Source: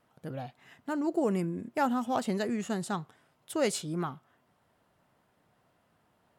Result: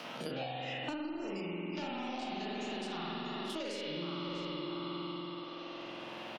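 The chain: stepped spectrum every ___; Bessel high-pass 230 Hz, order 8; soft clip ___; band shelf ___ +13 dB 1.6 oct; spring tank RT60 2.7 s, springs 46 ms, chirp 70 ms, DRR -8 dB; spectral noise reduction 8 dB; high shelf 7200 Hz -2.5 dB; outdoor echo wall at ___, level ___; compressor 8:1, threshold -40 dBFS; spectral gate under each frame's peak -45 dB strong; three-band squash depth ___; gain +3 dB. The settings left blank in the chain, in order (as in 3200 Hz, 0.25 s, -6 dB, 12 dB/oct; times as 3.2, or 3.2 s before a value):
50 ms, -28 dBFS, 3800 Hz, 110 m, -11 dB, 100%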